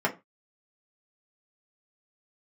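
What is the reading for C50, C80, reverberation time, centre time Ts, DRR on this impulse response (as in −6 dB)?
16.5 dB, 23.5 dB, 0.25 s, 10 ms, −1.5 dB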